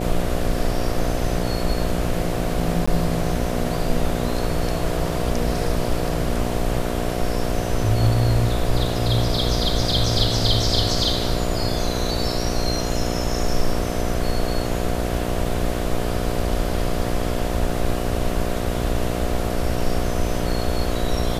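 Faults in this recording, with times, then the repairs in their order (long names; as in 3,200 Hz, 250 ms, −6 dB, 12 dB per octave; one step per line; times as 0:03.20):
mains buzz 60 Hz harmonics 12 −26 dBFS
0:02.86–0:02.88: drop-out 15 ms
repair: hum removal 60 Hz, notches 12
repair the gap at 0:02.86, 15 ms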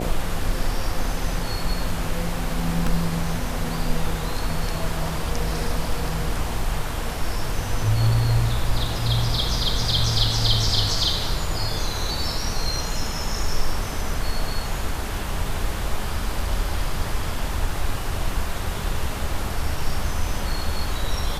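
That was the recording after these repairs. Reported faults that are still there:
none of them is left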